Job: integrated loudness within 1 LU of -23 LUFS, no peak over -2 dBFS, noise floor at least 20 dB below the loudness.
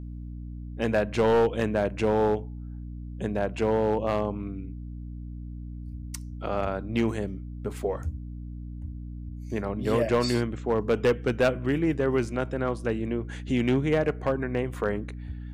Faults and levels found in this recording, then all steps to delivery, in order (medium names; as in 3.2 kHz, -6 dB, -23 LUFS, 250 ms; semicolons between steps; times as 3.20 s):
clipped samples 0.6%; clipping level -16.0 dBFS; hum 60 Hz; highest harmonic 300 Hz; hum level -35 dBFS; loudness -27.0 LUFS; peak level -16.0 dBFS; loudness target -23.0 LUFS
-> clip repair -16 dBFS; hum notches 60/120/180/240/300 Hz; trim +4 dB